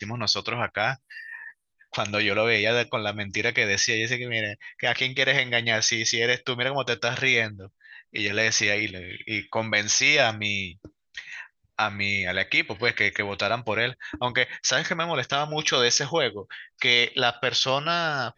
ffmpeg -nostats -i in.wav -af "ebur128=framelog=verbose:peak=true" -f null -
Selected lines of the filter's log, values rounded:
Integrated loudness:
  I:         -23.4 LUFS
  Threshold: -34.0 LUFS
Loudness range:
  LRA:         2.5 LU
  Threshold: -44.0 LUFS
  LRA low:   -25.4 LUFS
  LRA high:  -22.9 LUFS
True peak:
  Peak:       -5.1 dBFS